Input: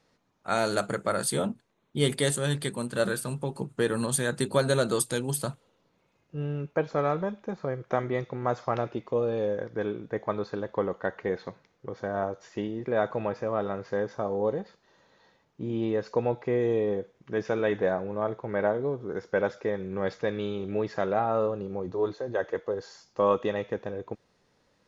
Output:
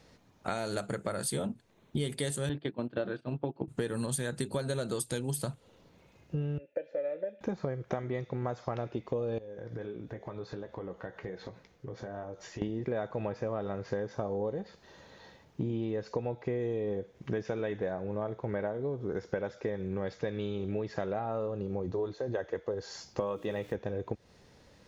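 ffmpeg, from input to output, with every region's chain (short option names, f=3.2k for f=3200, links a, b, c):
-filter_complex "[0:a]asettb=1/sr,asplit=3[a][b][c];[a]atrim=end=2.494[d];[b]atrim=start=2.49:end=3.68,asetpts=PTS-STARTPTS,afade=t=in:d=0.004:c=qsin,afade=t=out:st=1.186:d=0.004:c=qsin,agate=range=-14dB:threshold=-33dB:ratio=16:release=100:detection=peak,highpass=110,equalizer=f=170:t=q:w=4:g=-7,equalizer=f=310:t=q:w=4:g=10,equalizer=f=690:t=q:w=4:g=6,equalizer=f=2k:t=q:w=4:g=-3,lowpass=f=3.4k:w=0.5412,lowpass=f=3.4k:w=1.3066[e];[c]atrim=start=3.676[f];[d][e]acrossfade=d=0.004:c1=hsin:c2=qsin[g];[g][f]acrossfade=d=0.004:c1=qsin:c2=hsin,asettb=1/sr,asplit=3[h][i][j];[h]atrim=end=6.584[k];[i]atrim=start=6.58:end=7.41,asetpts=PTS-STARTPTS,afade=t=in:d=0.004:c=qsin,afade=t=out:st=0.826:d=0.004:c=qsin,asplit=3[l][m][n];[l]bandpass=f=530:t=q:w=8,volume=0dB[o];[m]bandpass=f=1.84k:t=q:w=8,volume=-6dB[p];[n]bandpass=f=2.48k:t=q:w=8,volume=-9dB[q];[o][p][q]amix=inputs=3:normalize=0,aecho=1:1:3.4:0.51,atrim=end_sample=36603[r];[j]atrim=start=7.406[s];[k][r]acrossfade=d=0.004:c1=hsin:c2=qsin[t];[t][s]acrossfade=d=0.004:c1=qsin:c2=hsin,asettb=1/sr,asplit=3[u][v][w];[u]atrim=end=9.384[x];[v]atrim=start=9.38:end=12.62,asetpts=PTS-STARTPTS,afade=t=in:d=0.004:c=qsin,afade=t=out:st=3.236:d=0.004:c=qsin,acompressor=threshold=-44dB:ratio=4:attack=3.2:release=140:knee=1:detection=peak,flanger=delay=2.6:depth=4.8:regen=-68:speed=1.4:shape=triangular,asplit=2[y][z];[z]adelay=17,volume=-11dB[aa];[y][aa]amix=inputs=2:normalize=0,atrim=end_sample=142884[ab];[w]atrim=start=12.616[ac];[x][ab]acrossfade=d=0.004:c1=hsin:c2=qsin[ad];[ad][ac]acrossfade=d=0.004:c1=qsin:c2=hsin,asettb=1/sr,asplit=3[ae][af][ag];[ae]atrim=end=23.204[ah];[af]atrim=start=23.2:end=23.75,asetpts=PTS-STARTPTS,afade=t=in:d=0.004:c=qsin,afade=t=out:st=0.546:d=0.004:c=qsin,highpass=74,bandreject=f=60:t=h:w=6,bandreject=f=120:t=h:w=6,bandreject=f=180:t=h:w=6,bandreject=f=240:t=h:w=6,bandreject=f=300:t=h:w=6,bandreject=f=360:t=h:w=6,bandreject=f=420:t=h:w=6,aeval=exprs='val(0)*gte(abs(val(0)),0.00299)':c=same[ai];[ag]atrim=start=23.746[aj];[ah][ai]acrossfade=d=0.004:c1=hsin:c2=qsin[ak];[ak][aj]acrossfade=d=0.004:c1=qsin:c2=hsin,equalizer=f=66:t=o:w=1.5:g=8.5,acompressor=threshold=-39dB:ratio=8,equalizer=f=1.2k:t=o:w=0.75:g=-4,volume=8.5dB"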